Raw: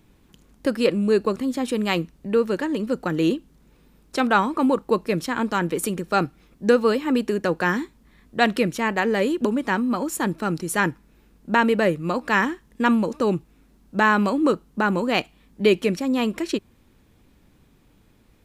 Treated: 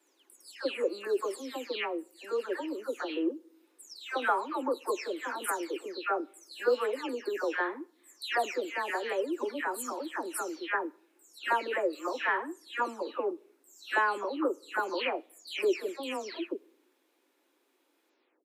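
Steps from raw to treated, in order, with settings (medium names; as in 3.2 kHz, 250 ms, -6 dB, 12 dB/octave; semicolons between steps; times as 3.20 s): delay that grows with frequency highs early, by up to 346 ms; steep high-pass 310 Hz 48 dB/octave; on a send: reverberation RT60 0.70 s, pre-delay 3 ms, DRR 22.5 dB; on the sum: trim -7.5 dB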